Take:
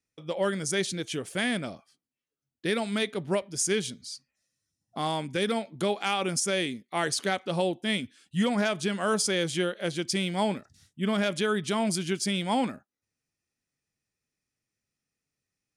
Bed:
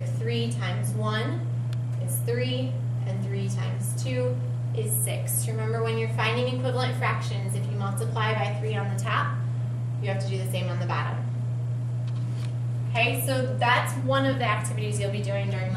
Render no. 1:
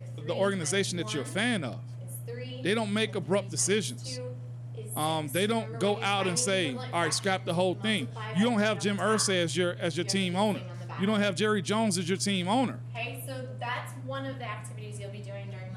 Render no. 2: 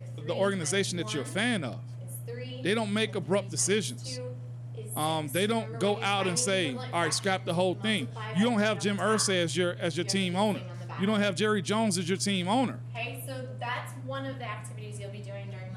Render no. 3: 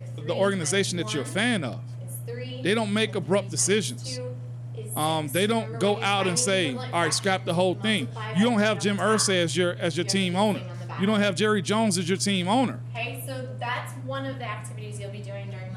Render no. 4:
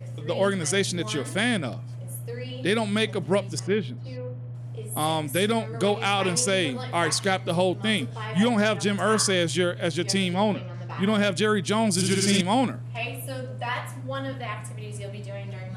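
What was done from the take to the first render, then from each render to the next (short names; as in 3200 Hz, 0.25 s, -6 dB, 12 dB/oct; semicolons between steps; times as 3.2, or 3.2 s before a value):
add bed -12 dB
nothing audible
gain +4 dB
3.59–4.55 air absorption 440 m; 10.34–10.9 air absorption 120 m; 11.91–12.41 flutter echo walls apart 10.2 m, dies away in 1.4 s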